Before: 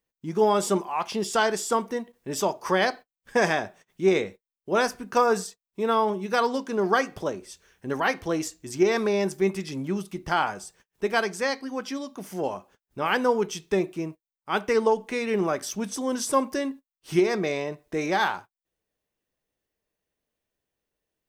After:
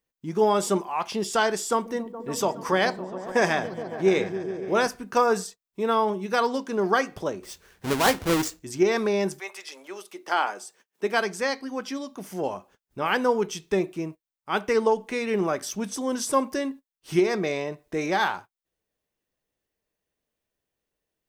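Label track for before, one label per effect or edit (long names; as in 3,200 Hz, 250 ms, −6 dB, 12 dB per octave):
1.640000	4.870000	echo whose low-pass opens from repeat to repeat 140 ms, low-pass from 200 Hz, each repeat up 1 octave, level −6 dB
7.430000	8.600000	each half-wave held at its own peak
9.380000	11.200000	high-pass filter 710 Hz → 170 Hz 24 dB per octave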